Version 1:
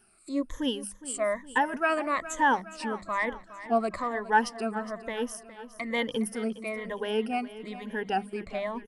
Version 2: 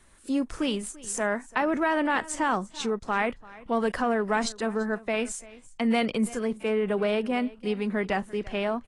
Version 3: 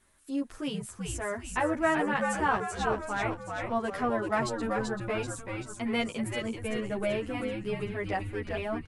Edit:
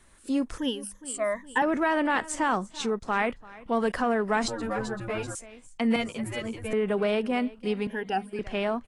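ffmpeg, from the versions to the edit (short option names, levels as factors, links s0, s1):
-filter_complex "[0:a]asplit=2[s0][s1];[2:a]asplit=2[s2][s3];[1:a]asplit=5[s4][s5][s6][s7][s8];[s4]atrim=end=0.582[s9];[s0]atrim=start=0.578:end=1.622[s10];[s5]atrim=start=1.618:end=4.482[s11];[s2]atrim=start=4.478:end=5.352[s12];[s6]atrim=start=5.348:end=5.962[s13];[s3]atrim=start=5.958:end=6.732[s14];[s7]atrim=start=6.728:end=7.872[s15];[s1]atrim=start=7.868:end=8.392[s16];[s8]atrim=start=8.388[s17];[s9][s10]acrossfade=d=0.004:c1=hsin:c2=hsin[s18];[s18][s11]acrossfade=d=0.004:c1=hsin:c2=hsin[s19];[s19][s12]acrossfade=d=0.004:c1=hsin:c2=hsin[s20];[s20][s13]acrossfade=d=0.004:c1=hsin:c2=hsin[s21];[s21][s14]acrossfade=d=0.004:c1=hsin:c2=hsin[s22];[s22][s15]acrossfade=d=0.004:c1=hsin:c2=hsin[s23];[s23][s16]acrossfade=d=0.004:c1=hsin:c2=hsin[s24];[s24][s17]acrossfade=d=0.004:c1=hsin:c2=hsin"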